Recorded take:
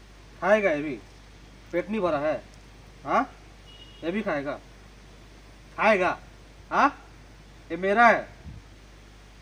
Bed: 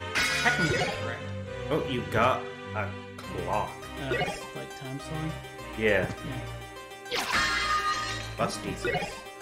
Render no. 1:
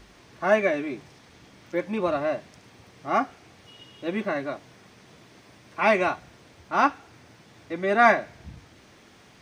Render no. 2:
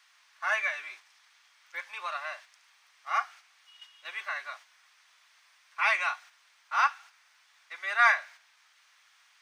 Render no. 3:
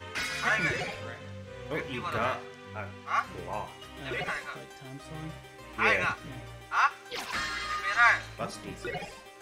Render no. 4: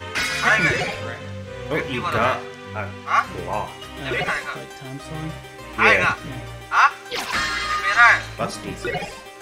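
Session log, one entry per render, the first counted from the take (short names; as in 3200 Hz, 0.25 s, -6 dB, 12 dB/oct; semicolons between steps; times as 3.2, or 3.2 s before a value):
de-hum 50 Hz, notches 3
HPF 1100 Hz 24 dB/oct; gate -49 dBFS, range -6 dB
add bed -7 dB
gain +10 dB; limiter -1 dBFS, peak gain reduction 2.5 dB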